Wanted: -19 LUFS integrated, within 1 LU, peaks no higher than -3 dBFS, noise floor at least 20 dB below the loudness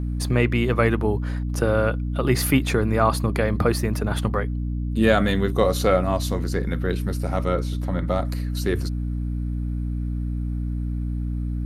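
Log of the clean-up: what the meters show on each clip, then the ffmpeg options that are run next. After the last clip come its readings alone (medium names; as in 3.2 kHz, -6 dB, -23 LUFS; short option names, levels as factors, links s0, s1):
hum 60 Hz; highest harmonic 300 Hz; hum level -23 dBFS; loudness -23.5 LUFS; peak level -3.5 dBFS; loudness target -19.0 LUFS
-> -af "bandreject=f=60:t=h:w=6,bandreject=f=120:t=h:w=6,bandreject=f=180:t=h:w=6,bandreject=f=240:t=h:w=6,bandreject=f=300:t=h:w=6"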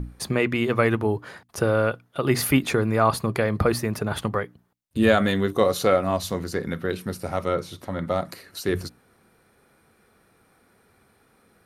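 hum not found; loudness -24.0 LUFS; peak level -4.0 dBFS; loudness target -19.0 LUFS
-> -af "volume=1.78,alimiter=limit=0.708:level=0:latency=1"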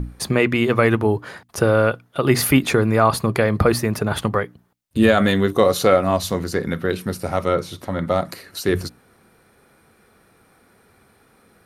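loudness -19.5 LUFS; peak level -3.0 dBFS; noise floor -57 dBFS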